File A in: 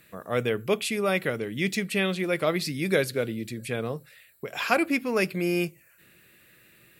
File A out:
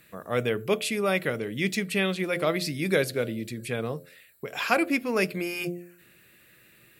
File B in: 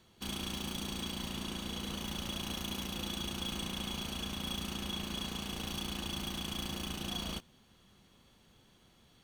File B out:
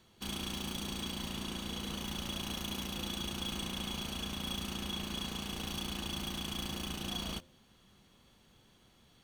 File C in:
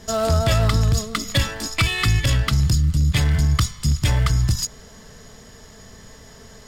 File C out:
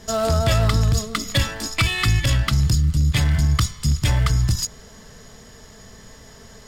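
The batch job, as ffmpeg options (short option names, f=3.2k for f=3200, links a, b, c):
-af "bandreject=f=87.54:t=h:w=4,bandreject=f=175.08:t=h:w=4,bandreject=f=262.62:t=h:w=4,bandreject=f=350.16:t=h:w=4,bandreject=f=437.7:t=h:w=4,bandreject=f=525.24:t=h:w=4,bandreject=f=612.78:t=h:w=4,bandreject=f=700.32:t=h:w=4"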